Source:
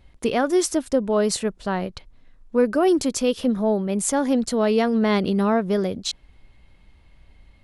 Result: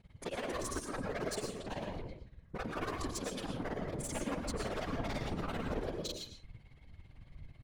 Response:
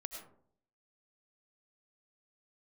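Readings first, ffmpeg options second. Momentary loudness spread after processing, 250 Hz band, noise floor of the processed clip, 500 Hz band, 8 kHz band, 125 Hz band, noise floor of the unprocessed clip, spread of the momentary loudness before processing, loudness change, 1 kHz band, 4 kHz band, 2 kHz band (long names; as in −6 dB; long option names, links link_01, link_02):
17 LU, −20.0 dB, −59 dBFS, −19.0 dB, −15.5 dB, −10.0 dB, −54 dBFS, 8 LU, −18.0 dB, −14.5 dB, −13.5 dB, −11.5 dB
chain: -filter_complex "[0:a]aeval=exprs='0.133*(abs(mod(val(0)/0.133+3,4)-2)-1)':channel_layout=same,acrossover=split=470|3000[link_01][link_02][link_03];[link_01]acompressor=threshold=-29dB:ratio=2.5[link_04];[link_04][link_02][link_03]amix=inputs=3:normalize=0,aecho=1:1:119:0.178,tremolo=f=18:d=1,asoftclip=type=tanh:threshold=-28.5dB,acompressor=threshold=-34dB:ratio=6,highshelf=frequency=6900:gain=-4[link_05];[1:a]atrim=start_sample=2205,afade=type=out:start_time=0.36:duration=0.01,atrim=end_sample=16317,asetrate=38367,aresample=44100[link_06];[link_05][link_06]afir=irnorm=-1:irlink=0,afftfilt=real='hypot(re,im)*cos(2*PI*random(0))':imag='hypot(re,im)*sin(2*PI*random(1))':win_size=512:overlap=0.75,volume=6.5dB"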